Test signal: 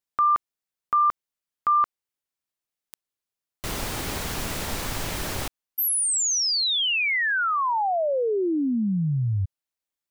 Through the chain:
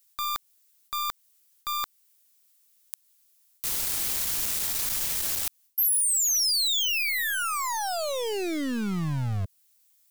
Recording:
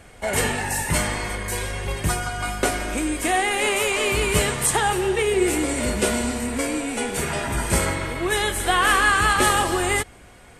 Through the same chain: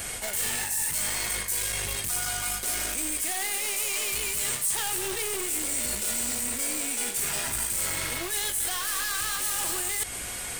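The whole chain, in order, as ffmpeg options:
ffmpeg -i in.wav -af "asoftclip=type=hard:threshold=-22dB,alimiter=level_in=2.5dB:limit=-24dB:level=0:latency=1:release=156,volume=-2.5dB,aeval=exprs='0.0473*(cos(1*acos(clip(val(0)/0.0473,-1,1)))-cos(1*PI/2))+0.00944*(cos(2*acos(clip(val(0)/0.0473,-1,1)))-cos(2*PI/2))+0.00668*(cos(5*acos(clip(val(0)/0.0473,-1,1)))-cos(5*PI/2))+0.000531*(cos(7*acos(clip(val(0)/0.0473,-1,1)))-cos(7*PI/2))':channel_layout=same,crystalizer=i=7.5:c=0,areverse,acompressor=threshold=-22dB:ratio=6:attack=0.57:release=218:knee=1:detection=peak,areverse" out.wav

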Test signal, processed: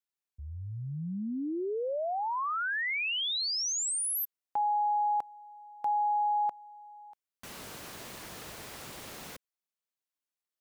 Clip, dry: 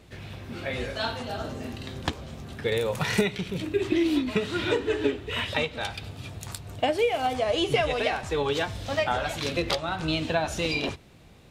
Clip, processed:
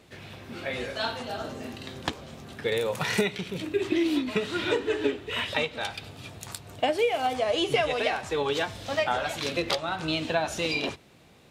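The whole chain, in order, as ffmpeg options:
ffmpeg -i in.wav -af "highpass=frequency=200:poles=1" out.wav

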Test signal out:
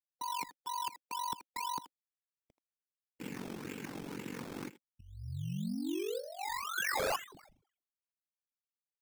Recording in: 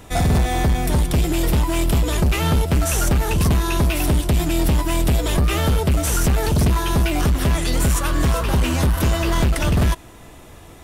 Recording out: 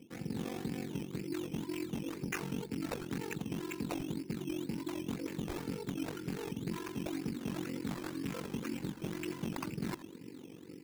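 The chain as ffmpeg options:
ffmpeg -i in.wav -filter_complex "[0:a]highpass=frequency=150:width=0.5412,highpass=frequency=150:width=1.3066,equalizer=frequency=190:width_type=q:width=4:gain=3,equalizer=frequency=290:width_type=q:width=4:gain=7,equalizer=frequency=720:width_type=q:width=4:gain=-10,equalizer=frequency=1100:width_type=q:width=4:gain=-7,equalizer=frequency=1600:width_type=q:width=4:gain=-4,equalizer=frequency=4000:width_type=q:width=4:gain=8,lowpass=frequency=4200:width=0.5412,lowpass=frequency=4200:width=1.3066,areverse,acompressor=threshold=-30dB:ratio=20,areverse,superequalizer=8b=0.355:11b=1.78:12b=3.55,afftdn=noise_reduction=34:noise_floor=-47,adynamicsmooth=sensitivity=1.5:basefreq=960,aeval=exprs='val(0)*sin(2*PI*23*n/s)':channel_layout=same,asplit=2[link_01][link_02];[link_02]adelay=80,highpass=300,lowpass=3400,asoftclip=type=hard:threshold=-30.5dB,volume=-14dB[link_03];[link_01][link_03]amix=inputs=2:normalize=0,acrusher=samples=12:mix=1:aa=0.000001:lfo=1:lforange=7.2:lforate=2,aeval=exprs='0.0501*(abs(mod(val(0)/0.0501+3,4)-2)-1)':channel_layout=same,volume=-1.5dB" out.wav

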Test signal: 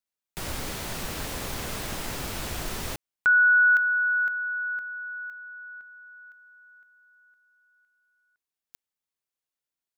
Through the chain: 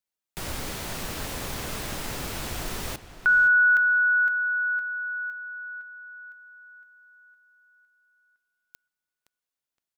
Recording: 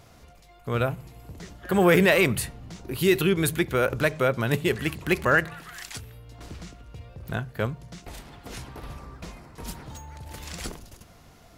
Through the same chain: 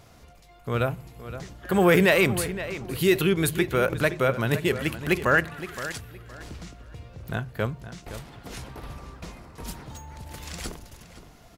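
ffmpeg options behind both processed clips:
ffmpeg -i in.wav -filter_complex "[0:a]asplit=2[link_01][link_02];[link_02]adelay=517,lowpass=frequency=4400:poles=1,volume=-13dB,asplit=2[link_03][link_04];[link_04]adelay=517,lowpass=frequency=4400:poles=1,volume=0.25,asplit=2[link_05][link_06];[link_06]adelay=517,lowpass=frequency=4400:poles=1,volume=0.25[link_07];[link_01][link_03][link_05][link_07]amix=inputs=4:normalize=0" out.wav

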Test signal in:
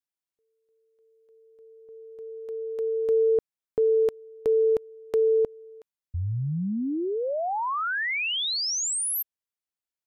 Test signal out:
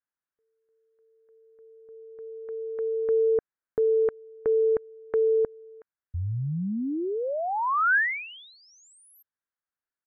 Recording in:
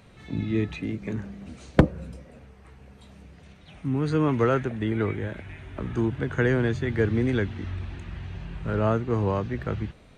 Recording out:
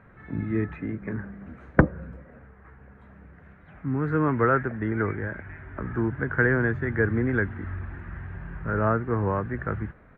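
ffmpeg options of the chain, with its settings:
ffmpeg -i in.wav -af "firequalizer=gain_entry='entry(720,0);entry(1600,9);entry(2700,-13);entry(4500,-28)':delay=0.05:min_phase=1,volume=-1dB" out.wav

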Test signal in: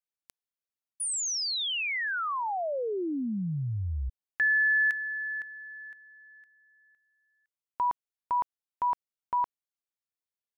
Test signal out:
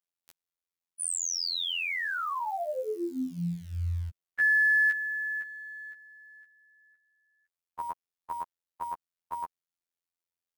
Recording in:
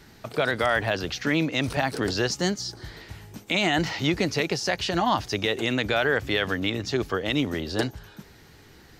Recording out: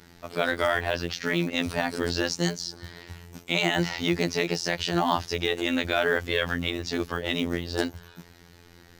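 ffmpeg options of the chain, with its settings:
ffmpeg -i in.wav -af "acrusher=bits=7:mode=log:mix=0:aa=0.000001,afftfilt=real='hypot(re,im)*cos(PI*b)':imag='0':win_size=2048:overlap=0.75,volume=2dB" out.wav

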